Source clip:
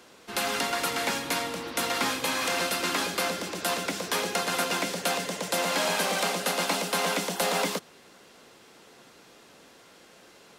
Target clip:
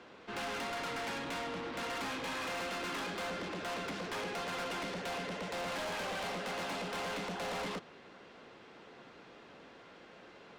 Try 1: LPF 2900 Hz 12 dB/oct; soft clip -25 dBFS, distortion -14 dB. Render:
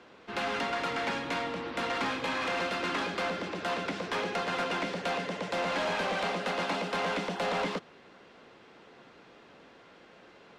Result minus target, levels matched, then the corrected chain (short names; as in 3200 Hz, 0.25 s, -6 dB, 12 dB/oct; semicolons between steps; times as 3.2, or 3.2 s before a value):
soft clip: distortion -9 dB
LPF 2900 Hz 12 dB/oct; soft clip -36.5 dBFS, distortion -6 dB